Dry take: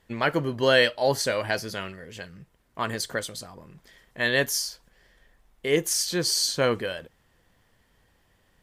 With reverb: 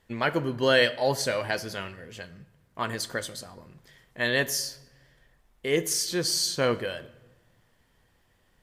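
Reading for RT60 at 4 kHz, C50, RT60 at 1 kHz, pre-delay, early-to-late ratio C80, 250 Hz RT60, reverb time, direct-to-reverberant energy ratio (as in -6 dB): 0.75 s, 17.5 dB, 1.1 s, 8 ms, 19.0 dB, 1.5 s, 1.1 s, 12.0 dB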